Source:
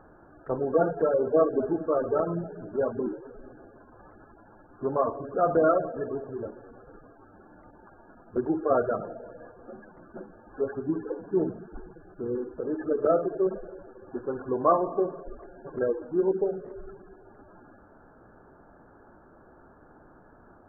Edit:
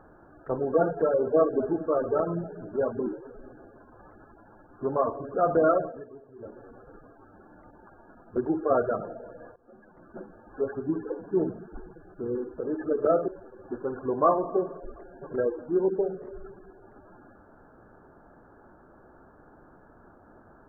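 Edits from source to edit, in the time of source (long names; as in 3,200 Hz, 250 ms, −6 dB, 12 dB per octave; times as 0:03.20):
0:05.81–0:06.60: duck −14 dB, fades 0.24 s
0:09.56–0:10.19: fade in, from −19.5 dB
0:13.28–0:13.71: remove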